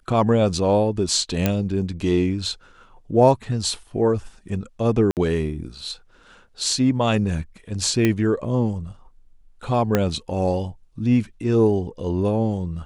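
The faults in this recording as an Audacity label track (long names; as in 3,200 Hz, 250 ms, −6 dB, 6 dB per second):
1.460000	1.460000	click −5 dBFS
5.110000	5.170000	drop-out 58 ms
8.050000	8.050000	click −7 dBFS
9.950000	9.950000	click −5 dBFS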